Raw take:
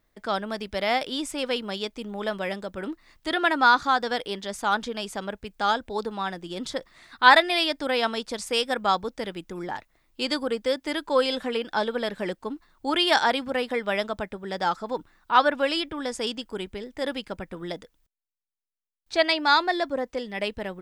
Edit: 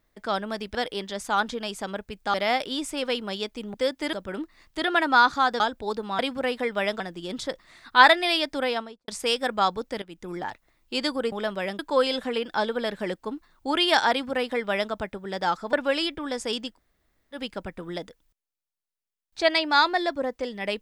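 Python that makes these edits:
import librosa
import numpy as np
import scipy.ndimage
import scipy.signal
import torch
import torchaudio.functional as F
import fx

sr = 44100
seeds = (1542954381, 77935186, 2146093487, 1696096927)

y = fx.studio_fade_out(x, sr, start_s=7.85, length_s=0.5)
y = fx.edit(y, sr, fx.swap(start_s=2.15, length_s=0.47, other_s=10.59, other_length_s=0.39),
    fx.move(start_s=4.09, length_s=1.59, to_s=0.75),
    fx.fade_in_from(start_s=9.29, length_s=0.28, floor_db=-14.5),
    fx.duplicate(start_s=13.3, length_s=0.81, to_s=6.27),
    fx.cut(start_s=14.92, length_s=0.55),
    fx.room_tone_fill(start_s=16.48, length_s=0.62, crossfade_s=0.1), tone=tone)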